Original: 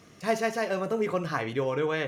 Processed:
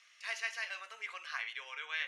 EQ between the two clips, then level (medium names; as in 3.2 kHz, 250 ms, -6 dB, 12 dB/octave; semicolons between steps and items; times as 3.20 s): ladder high-pass 1.8 kHz, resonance 25%; low-pass 11 kHz 24 dB/octave; tilt EQ -4 dB/octave; +9.5 dB